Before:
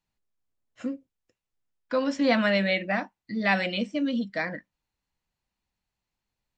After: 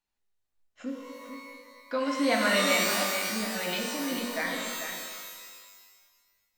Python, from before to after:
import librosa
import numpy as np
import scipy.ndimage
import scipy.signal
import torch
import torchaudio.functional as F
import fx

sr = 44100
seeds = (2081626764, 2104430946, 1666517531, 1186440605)

p1 = fx.peak_eq(x, sr, hz=99.0, db=-12.0, octaves=2.0)
p2 = fx.over_compress(p1, sr, threshold_db=-33.0, ratio=-1.0, at=(2.79, 4.19))
p3 = p2 + fx.echo_single(p2, sr, ms=444, db=-8.5, dry=0)
p4 = fx.rev_shimmer(p3, sr, seeds[0], rt60_s=1.5, semitones=12, shimmer_db=-2, drr_db=1.5)
y = p4 * librosa.db_to_amplitude(-3.0)